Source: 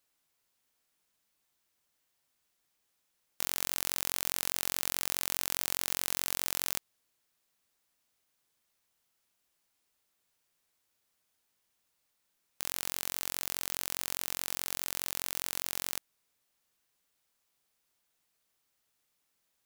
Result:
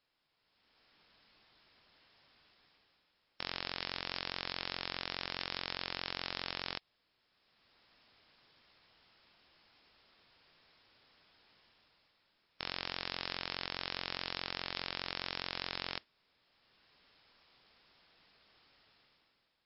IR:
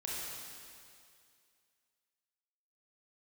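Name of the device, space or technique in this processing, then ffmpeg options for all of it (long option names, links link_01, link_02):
low-bitrate web radio: -af "dynaudnorm=framelen=130:gausssize=11:maxgain=15dB,alimiter=limit=-7dB:level=0:latency=1:release=16,volume=2dB" -ar 12000 -c:a libmp3lame -b:a 40k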